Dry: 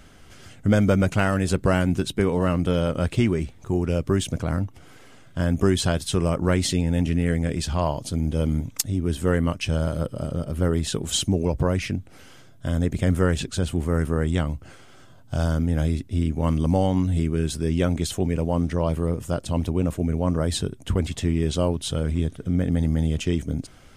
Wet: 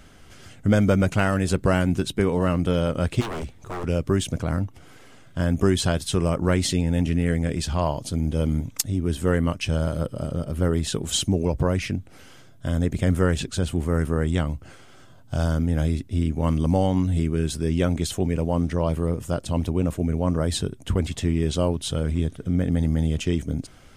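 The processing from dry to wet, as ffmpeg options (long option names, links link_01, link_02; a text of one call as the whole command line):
ffmpeg -i in.wav -filter_complex "[0:a]asplit=3[link_01][link_02][link_03];[link_01]afade=type=out:start_time=3.2:duration=0.02[link_04];[link_02]aeval=exprs='0.0531*(abs(mod(val(0)/0.0531+3,4)-2)-1)':channel_layout=same,afade=type=in:start_time=3.2:duration=0.02,afade=type=out:start_time=3.83:duration=0.02[link_05];[link_03]afade=type=in:start_time=3.83:duration=0.02[link_06];[link_04][link_05][link_06]amix=inputs=3:normalize=0" out.wav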